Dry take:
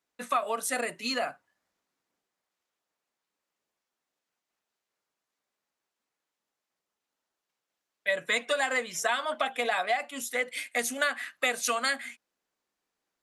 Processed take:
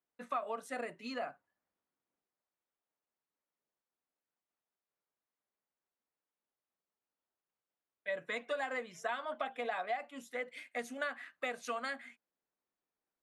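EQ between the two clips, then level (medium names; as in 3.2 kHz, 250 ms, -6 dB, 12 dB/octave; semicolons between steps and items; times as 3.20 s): low-pass 1.4 kHz 6 dB/octave; -7.0 dB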